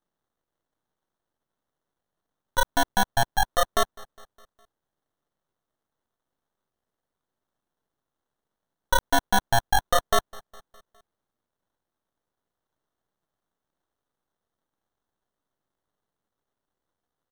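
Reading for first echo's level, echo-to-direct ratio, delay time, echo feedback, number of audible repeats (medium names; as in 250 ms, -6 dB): -23.0 dB, -21.5 dB, 205 ms, 55%, 3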